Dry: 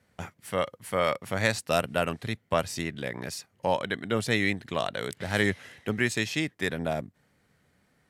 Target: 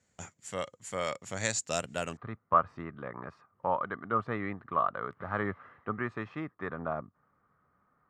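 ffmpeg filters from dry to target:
-af "asetnsamples=n=441:p=0,asendcmd='2.17 lowpass f 1200',lowpass=f=7.1k:t=q:w=10,volume=-8dB"

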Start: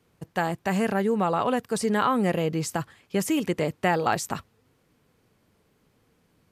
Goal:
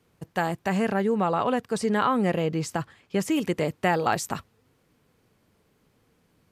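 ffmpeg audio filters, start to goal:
-filter_complex "[0:a]asettb=1/sr,asplit=3[a][b][c];[a]atrim=end=0.684[d];[b]atrim=start=0.68:end=3.36,asetpts=PTS-STARTPTS,afade=t=in:d=0.004:c=qsin,afade=t=out:st=2.676:d=0.004:c=qsin,highshelf=f=9.6k:g=-11[e];[c]atrim=start=3.356[f];[d][e]acrossfade=d=0.004:c1=hsin:c2=qsin[g];[g][f]acrossfade=d=0.004:c1=qsin:c2=hsin"

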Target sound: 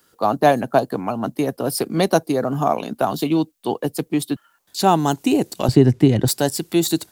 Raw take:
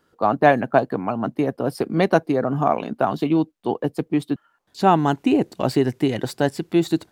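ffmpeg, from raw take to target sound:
-filter_complex "[0:a]asettb=1/sr,asplit=3[a][b][c];[a]atrim=end=5.684[d];[b]atrim=start=5.68:end=6.28,asetpts=PTS-STARTPTS,afade=t=in:d=0.004:c=qsin,afade=t=out:st=0.596:d=0.004:c=qsin,aemphasis=mode=reproduction:type=riaa[e];[c]atrim=start=6.276[f];[d][e]acrossfade=d=0.004:c1=hsin:c2=qsin[g];[g][f]acrossfade=d=0.004:c1=qsin:c2=hsin,acrossover=split=110|1300|3200[h][i][j][k];[j]acompressor=threshold=-45dB:ratio=6[l];[h][i][l][k]amix=inputs=4:normalize=0,crystalizer=i=5:c=0"

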